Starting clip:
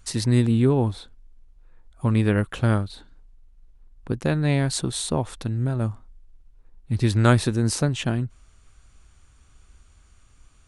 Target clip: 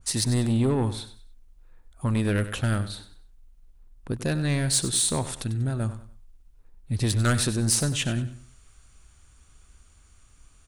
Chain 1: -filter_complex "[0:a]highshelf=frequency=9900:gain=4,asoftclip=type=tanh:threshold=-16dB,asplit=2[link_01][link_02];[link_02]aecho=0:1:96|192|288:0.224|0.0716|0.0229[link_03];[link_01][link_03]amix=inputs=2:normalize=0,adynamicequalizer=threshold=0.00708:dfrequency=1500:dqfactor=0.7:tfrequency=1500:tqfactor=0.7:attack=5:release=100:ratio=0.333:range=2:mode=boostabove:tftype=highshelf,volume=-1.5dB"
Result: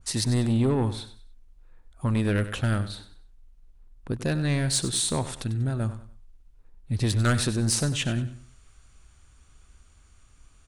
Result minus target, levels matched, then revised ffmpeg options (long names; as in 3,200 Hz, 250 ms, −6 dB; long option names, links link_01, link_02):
8,000 Hz band −2.5 dB
-filter_complex "[0:a]highshelf=frequency=9900:gain=13.5,asoftclip=type=tanh:threshold=-16dB,asplit=2[link_01][link_02];[link_02]aecho=0:1:96|192|288:0.224|0.0716|0.0229[link_03];[link_01][link_03]amix=inputs=2:normalize=0,adynamicequalizer=threshold=0.00708:dfrequency=1500:dqfactor=0.7:tfrequency=1500:tqfactor=0.7:attack=5:release=100:ratio=0.333:range=2:mode=boostabove:tftype=highshelf,volume=-1.5dB"